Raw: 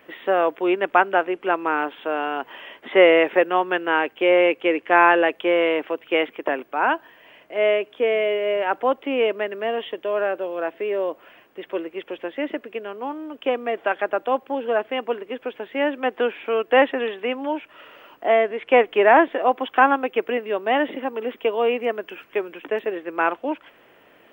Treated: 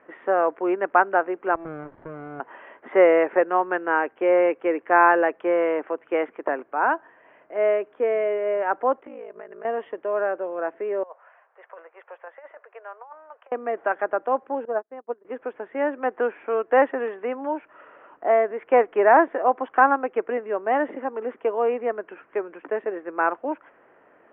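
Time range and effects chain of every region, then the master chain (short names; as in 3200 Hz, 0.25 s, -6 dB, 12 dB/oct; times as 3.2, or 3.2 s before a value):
1.55–2.4 compressor 3:1, threshold -31 dBFS + running maximum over 33 samples
9–9.65 ring modulator 27 Hz + compressor 4:1, threshold -35 dBFS
11.03–13.52 Bessel high-pass 1100 Hz, order 8 + tilt -5 dB/oct + negative-ratio compressor -38 dBFS, ratio -0.5
14.65–15.25 LPF 1000 Hz 6 dB/oct + upward expander 2.5:1, over -42 dBFS
whole clip: LPF 1700 Hz 24 dB/oct; low shelf 220 Hz -10 dB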